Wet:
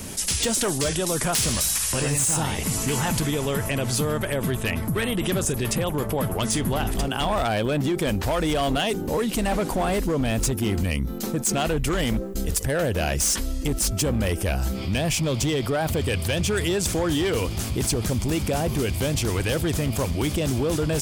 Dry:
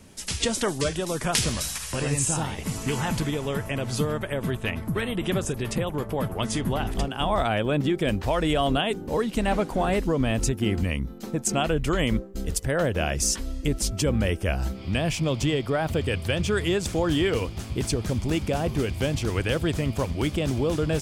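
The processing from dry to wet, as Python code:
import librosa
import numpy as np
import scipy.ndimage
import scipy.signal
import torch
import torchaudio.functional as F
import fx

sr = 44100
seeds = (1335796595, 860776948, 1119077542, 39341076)

y = fx.high_shelf(x, sr, hz=7200.0, db=12.0)
y = np.clip(y, -10.0 ** (-19.5 / 20.0), 10.0 ** (-19.5 / 20.0))
y = fx.env_flatten(y, sr, amount_pct=50)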